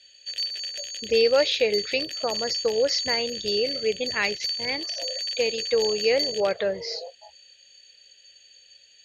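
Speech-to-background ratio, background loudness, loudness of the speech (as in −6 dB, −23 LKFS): 2.5 dB, −28.5 LKFS, −26.0 LKFS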